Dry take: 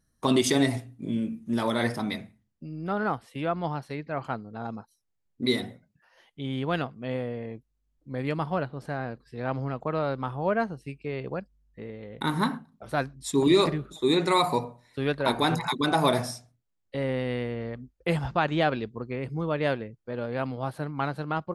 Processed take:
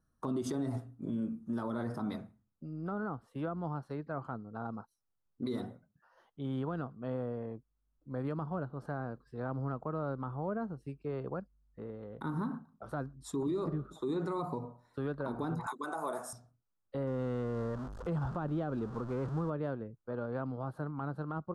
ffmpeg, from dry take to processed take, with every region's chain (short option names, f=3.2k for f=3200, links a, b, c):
-filter_complex "[0:a]asettb=1/sr,asplit=3[a][b][c];[a]atrim=end=15.664[d];[b]atrim=start=15.66:end=16.33,asetpts=PTS-STARTPTS,afade=t=in:d=0.004:c=qsin,afade=t=out:st=0.666:d=0.004:c=qsin,highpass=750,highshelf=f=6k:t=q:w=3:g=7,acontrast=52[e];[c]atrim=start=16.326[f];[d][e]acrossfade=d=0.004:c1=hsin:c2=qsin[g];[g][f]acrossfade=d=0.004:c1=qsin:c2=hsin,asettb=1/sr,asplit=3[h][i][j];[h]atrim=end=17.074[k];[i]atrim=start=17.07:end=19.5,asetpts=PTS-STARTPTS,afade=t=in:d=0.004:c=qsin,afade=t=out:st=2.426:d=0.004:c=qsin,aeval=exprs='val(0)+0.5*0.0211*sgn(val(0))':c=same,lowpass=7.5k[l];[j]atrim=start=19.496[m];[k][l]acrossfade=d=0.004:c1=hsin:c2=qsin[n];[n][m]acrossfade=d=0.004:c1=qsin:c2=hsin,highshelf=f=1.7k:t=q:w=3:g=-8,acrossover=split=430[o][p];[p]acompressor=threshold=-35dB:ratio=4[q];[o][q]amix=inputs=2:normalize=0,alimiter=limit=-22.5dB:level=0:latency=1:release=55,volume=-4.5dB"